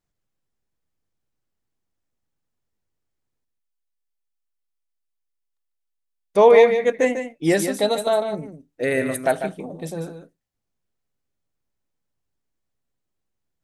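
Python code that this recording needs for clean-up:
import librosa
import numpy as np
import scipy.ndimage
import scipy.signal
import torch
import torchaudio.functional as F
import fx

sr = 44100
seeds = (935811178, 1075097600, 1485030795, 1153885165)

y = fx.fix_echo_inverse(x, sr, delay_ms=148, level_db=-8.5)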